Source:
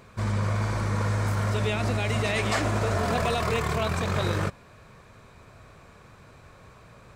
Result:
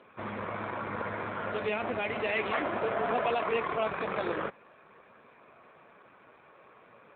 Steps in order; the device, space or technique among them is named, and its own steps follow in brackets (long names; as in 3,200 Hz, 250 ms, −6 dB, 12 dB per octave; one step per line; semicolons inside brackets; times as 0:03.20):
telephone (band-pass filter 290–3,300 Hz; AMR narrowband 7.4 kbit/s 8,000 Hz)